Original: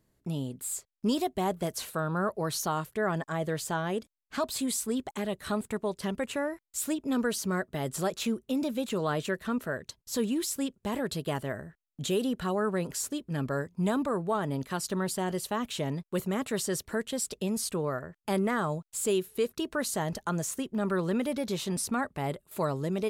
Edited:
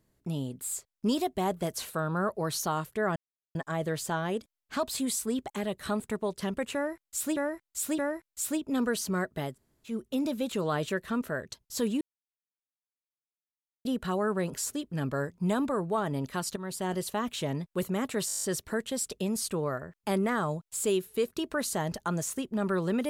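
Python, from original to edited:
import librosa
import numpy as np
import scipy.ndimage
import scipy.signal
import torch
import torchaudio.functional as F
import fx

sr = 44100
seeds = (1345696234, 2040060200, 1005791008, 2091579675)

y = fx.edit(x, sr, fx.insert_silence(at_s=3.16, length_s=0.39),
    fx.repeat(start_s=6.35, length_s=0.62, count=3),
    fx.room_tone_fill(start_s=7.87, length_s=0.42, crossfade_s=0.16),
    fx.silence(start_s=10.38, length_s=1.84),
    fx.fade_in_from(start_s=14.93, length_s=0.34, floor_db=-12.5),
    fx.stutter(start_s=16.64, slice_s=0.02, count=9), tone=tone)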